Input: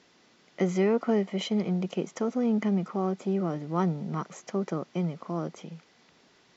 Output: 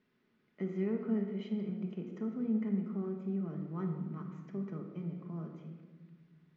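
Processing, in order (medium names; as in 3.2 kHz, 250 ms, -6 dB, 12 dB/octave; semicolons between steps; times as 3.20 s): low-pass 1.6 kHz 12 dB/octave; peaking EQ 730 Hz -14.5 dB 1.7 oct; hum notches 60/120/180 Hz; simulated room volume 1200 m³, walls mixed, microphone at 1.4 m; trim -8 dB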